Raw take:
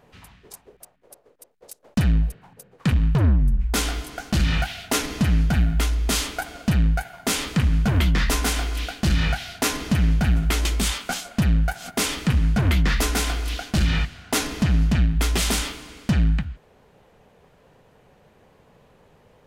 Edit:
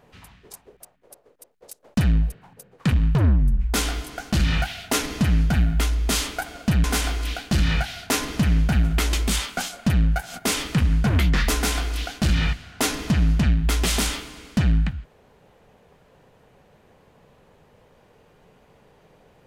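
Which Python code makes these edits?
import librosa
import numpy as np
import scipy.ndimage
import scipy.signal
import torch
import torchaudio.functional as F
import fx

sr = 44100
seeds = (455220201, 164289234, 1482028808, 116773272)

y = fx.edit(x, sr, fx.cut(start_s=6.84, length_s=1.52), tone=tone)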